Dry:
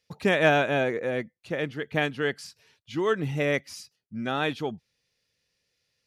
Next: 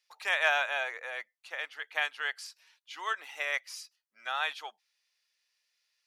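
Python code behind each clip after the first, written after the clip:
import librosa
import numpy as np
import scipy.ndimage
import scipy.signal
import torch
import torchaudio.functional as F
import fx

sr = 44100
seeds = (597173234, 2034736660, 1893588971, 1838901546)

y = scipy.signal.sosfilt(scipy.signal.butter(4, 830.0, 'highpass', fs=sr, output='sos'), x)
y = y * 10.0 ** (-1.5 / 20.0)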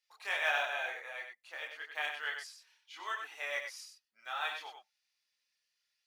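y = fx.block_float(x, sr, bits=7)
y = fx.chorus_voices(y, sr, voices=4, hz=0.58, base_ms=26, depth_ms=2.0, mix_pct=50)
y = y + 10.0 ** (-6.5 / 20.0) * np.pad(y, (int(94 * sr / 1000.0), 0))[:len(y)]
y = y * 10.0 ** (-2.5 / 20.0)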